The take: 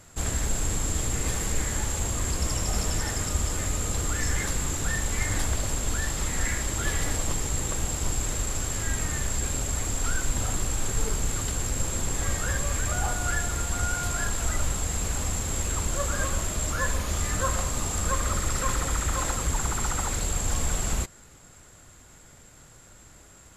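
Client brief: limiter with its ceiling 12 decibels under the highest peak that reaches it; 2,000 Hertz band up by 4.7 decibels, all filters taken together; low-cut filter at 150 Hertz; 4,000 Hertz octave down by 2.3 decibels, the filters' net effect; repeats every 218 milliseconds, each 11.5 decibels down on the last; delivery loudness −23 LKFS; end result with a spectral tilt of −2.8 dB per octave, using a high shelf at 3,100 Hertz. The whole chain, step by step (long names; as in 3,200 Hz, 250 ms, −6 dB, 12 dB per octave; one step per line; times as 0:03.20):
high-pass filter 150 Hz
parametric band 2,000 Hz +6.5 dB
high-shelf EQ 3,100 Hz +4 dB
parametric band 4,000 Hz −8.5 dB
brickwall limiter −24 dBFS
repeating echo 218 ms, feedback 27%, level −11.5 dB
level +8 dB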